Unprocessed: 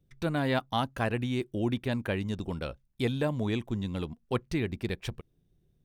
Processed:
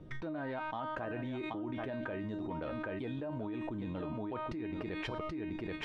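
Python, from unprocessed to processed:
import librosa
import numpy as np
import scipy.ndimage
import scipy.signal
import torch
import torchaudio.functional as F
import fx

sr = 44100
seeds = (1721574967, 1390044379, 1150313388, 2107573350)

p1 = 10.0 ** (-22.0 / 20.0) * np.tanh(x / 10.0 ** (-22.0 / 20.0))
p2 = x + F.gain(torch.from_numpy(p1), -3.5).numpy()
p3 = scipy.signal.sosfilt(scipy.signal.butter(2, 1000.0, 'lowpass', fs=sr, output='sos'), p2)
p4 = fx.tilt_eq(p3, sr, slope=3.0)
p5 = fx.comb_fb(p4, sr, f0_hz=310.0, decay_s=0.33, harmonics='all', damping=0.0, mix_pct=90)
p6 = p5 + fx.echo_single(p5, sr, ms=780, db=-15.0, dry=0)
p7 = fx.env_flatten(p6, sr, amount_pct=100)
y = F.gain(torch.from_numpy(p7), -1.5).numpy()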